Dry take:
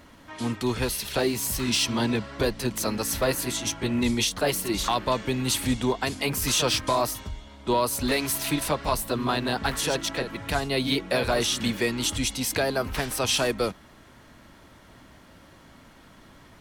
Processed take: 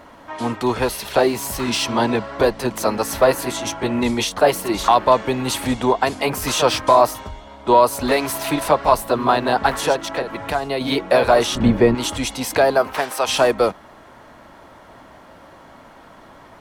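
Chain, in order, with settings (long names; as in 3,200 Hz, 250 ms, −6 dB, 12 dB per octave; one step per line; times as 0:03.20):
0:09.92–0:10.81: downward compressor 5 to 1, threshold −27 dBFS, peak gain reduction 6.5 dB
0:11.55–0:11.95: spectral tilt −4 dB per octave
0:12.77–0:13.26: high-pass filter 220 Hz → 750 Hz 6 dB per octave
parametric band 770 Hz +13 dB 2.3 octaves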